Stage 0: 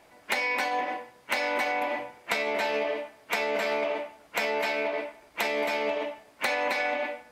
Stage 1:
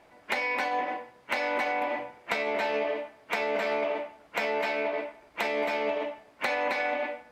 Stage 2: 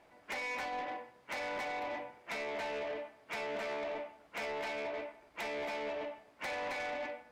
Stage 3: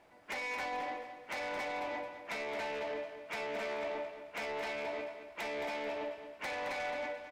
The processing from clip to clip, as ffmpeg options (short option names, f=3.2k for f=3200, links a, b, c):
-af "highshelf=f=4.7k:g=-10.5"
-af "asoftclip=type=tanh:threshold=-29dB,volume=-5.5dB"
-af "aecho=1:1:218|436|654|872:0.316|0.111|0.0387|0.0136"